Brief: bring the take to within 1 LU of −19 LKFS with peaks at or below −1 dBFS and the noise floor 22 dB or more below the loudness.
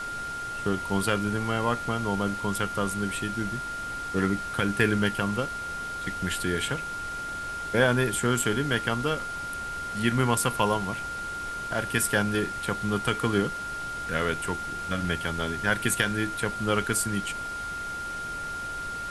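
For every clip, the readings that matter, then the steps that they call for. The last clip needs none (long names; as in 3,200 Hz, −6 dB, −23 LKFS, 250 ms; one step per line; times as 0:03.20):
interfering tone 1,400 Hz; level of the tone −32 dBFS; background noise floor −34 dBFS; target noise floor −50 dBFS; integrated loudness −28.0 LKFS; sample peak −8.0 dBFS; target loudness −19.0 LKFS
→ notch filter 1,400 Hz, Q 30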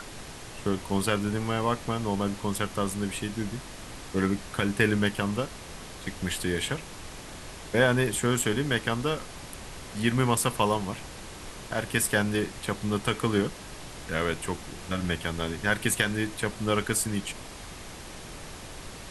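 interfering tone none found; background noise floor −43 dBFS; target noise floor −51 dBFS
→ noise reduction from a noise print 8 dB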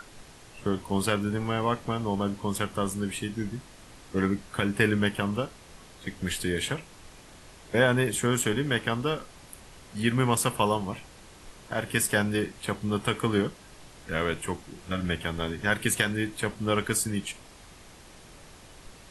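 background noise floor −51 dBFS; integrated loudness −28.5 LKFS; sample peak −8.5 dBFS; target loudness −19.0 LKFS
→ level +9.5 dB
brickwall limiter −1 dBFS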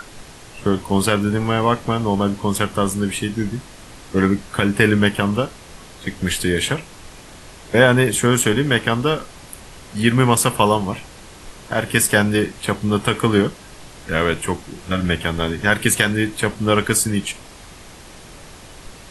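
integrated loudness −19.0 LKFS; sample peak −1.0 dBFS; background noise floor −41 dBFS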